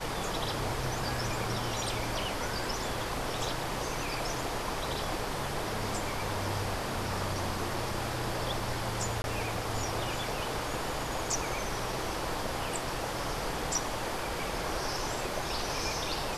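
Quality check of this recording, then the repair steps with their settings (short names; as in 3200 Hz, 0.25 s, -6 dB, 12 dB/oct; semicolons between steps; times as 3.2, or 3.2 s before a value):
9.22–9.24 gap 21 ms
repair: interpolate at 9.22, 21 ms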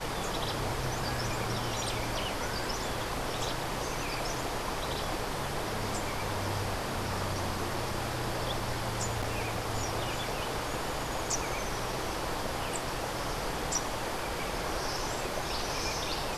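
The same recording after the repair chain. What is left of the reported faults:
none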